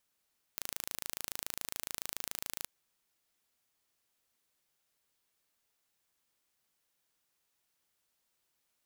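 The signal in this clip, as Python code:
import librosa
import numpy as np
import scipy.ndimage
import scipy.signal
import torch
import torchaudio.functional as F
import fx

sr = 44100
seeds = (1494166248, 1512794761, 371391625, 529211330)

y = 10.0 ** (-10.0 / 20.0) * (np.mod(np.arange(round(2.07 * sr)), round(sr / 27.1)) == 0)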